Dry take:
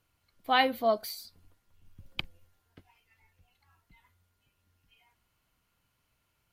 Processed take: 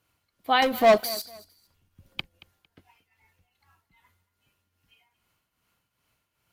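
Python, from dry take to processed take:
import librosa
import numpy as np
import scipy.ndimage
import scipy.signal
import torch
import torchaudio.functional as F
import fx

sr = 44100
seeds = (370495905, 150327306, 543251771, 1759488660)

y = fx.highpass(x, sr, hz=100.0, slope=6)
y = fx.leveller(y, sr, passes=3, at=(0.62, 1.22))
y = fx.tremolo_shape(y, sr, shape='triangle', hz=2.5, depth_pct=70)
y = fx.echo_feedback(y, sr, ms=227, feedback_pct=26, wet_db=-19.5)
y = y * 10.0 ** (5.0 / 20.0)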